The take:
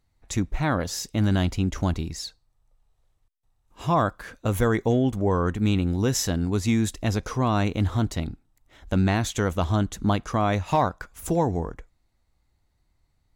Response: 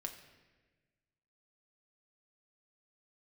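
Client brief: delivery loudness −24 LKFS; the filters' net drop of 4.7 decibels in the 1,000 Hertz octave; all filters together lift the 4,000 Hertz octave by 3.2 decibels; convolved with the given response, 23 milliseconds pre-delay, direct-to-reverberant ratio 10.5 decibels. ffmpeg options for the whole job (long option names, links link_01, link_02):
-filter_complex "[0:a]equalizer=frequency=1000:width_type=o:gain=-6.5,equalizer=frequency=4000:width_type=o:gain=4.5,asplit=2[link_01][link_02];[1:a]atrim=start_sample=2205,adelay=23[link_03];[link_02][link_03]afir=irnorm=-1:irlink=0,volume=-8.5dB[link_04];[link_01][link_04]amix=inputs=2:normalize=0,volume=1.5dB"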